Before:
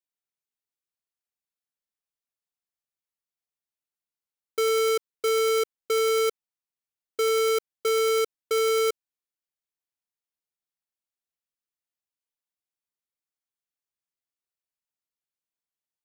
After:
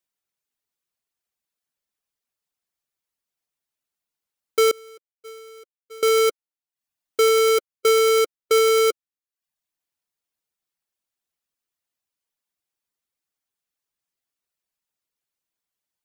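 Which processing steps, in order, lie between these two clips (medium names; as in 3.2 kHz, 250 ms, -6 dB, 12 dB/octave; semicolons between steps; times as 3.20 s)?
reverb removal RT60 0.57 s; 4.71–6.03 s: expander -11 dBFS; trim +7.5 dB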